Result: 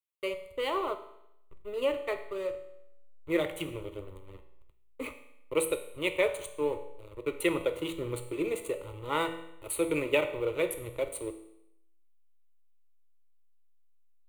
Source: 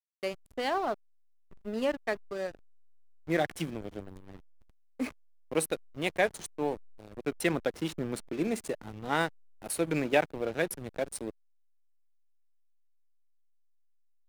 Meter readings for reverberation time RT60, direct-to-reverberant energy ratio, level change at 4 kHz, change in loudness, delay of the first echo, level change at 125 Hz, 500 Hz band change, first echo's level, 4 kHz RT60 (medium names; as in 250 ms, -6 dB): 0.80 s, 7.0 dB, +1.0 dB, 0.0 dB, no echo, -3.5 dB, +1.5 dB, no echo, 0.80 s